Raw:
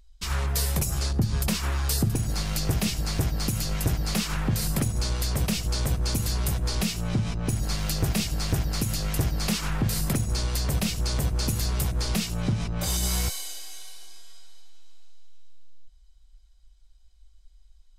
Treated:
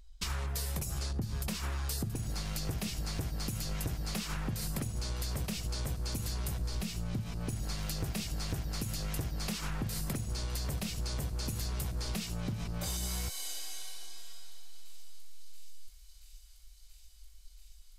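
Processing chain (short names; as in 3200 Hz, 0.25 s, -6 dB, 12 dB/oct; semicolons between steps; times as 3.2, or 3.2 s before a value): 6.6–7.22 low shelf 170 Hz +5.5 dB; compressor 6:1, threshold -33 dBFS, peak gain reduction 14.5 dB; thin delay 0.68 s, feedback 85%, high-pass 2700 Hz, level -21 dB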